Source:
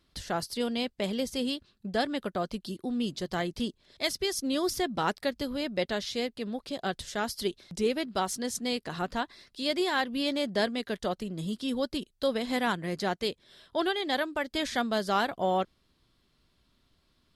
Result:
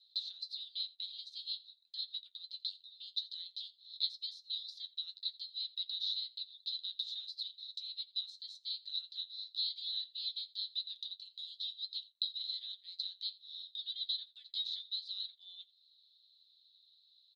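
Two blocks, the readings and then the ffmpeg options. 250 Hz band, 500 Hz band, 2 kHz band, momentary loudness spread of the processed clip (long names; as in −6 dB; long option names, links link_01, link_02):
below −40 dB, below −40 dB, below −35 dB, 8 LU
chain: -filter_complex "[0:a]aemphasis=mode=production:type=75kf,acompressor=threshold=-34dB:ratio=6,flanger=delay=9.9:depth=1.1:regen=51:speed=0.93:shape=triangular,asuperpass=centerf=3900:order=4:qfactor=7.7,asplit=2[link_01][link_02];[link_02]aecho=0:1:85:0.0841[link_03];[link_01][link_03]amix=inputs=2:normalize=0,volume=12.5dB"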